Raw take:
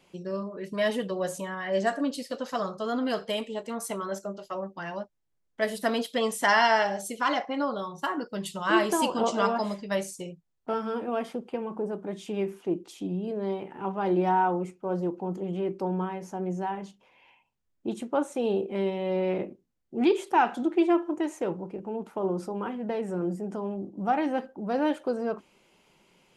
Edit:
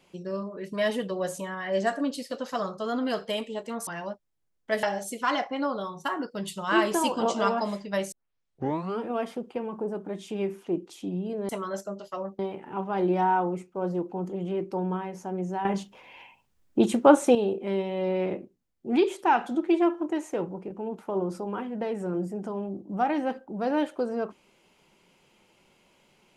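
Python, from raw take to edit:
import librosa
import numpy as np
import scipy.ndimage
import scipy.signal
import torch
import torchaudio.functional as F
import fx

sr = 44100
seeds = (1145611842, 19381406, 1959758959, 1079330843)

y = fx.edit(x, sr, fx.move(start_s=3.87, length_s=0.9, to_s=13.47),
    fx.cut(start_s=5.73, length_s=1.08),
    fx.tape_start(start_s=10.1, length_s=0.89),
    fx.clip_gain(start_s=16.73, length_s=1.7, db=10.5), tone=tone)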